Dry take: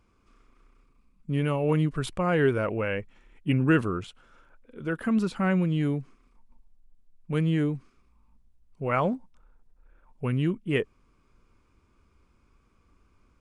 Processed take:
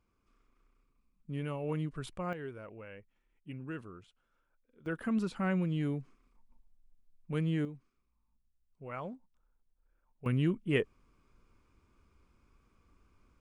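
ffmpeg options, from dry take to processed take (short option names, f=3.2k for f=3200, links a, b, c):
-af "asetnsamples=n=441:p=0,asendcmd='2.33 volume volume -20dB;4.86 volume volume -7dB;7.65 volume volume -16dB;10.26 volume volume -3.5dB',volume=-11dB"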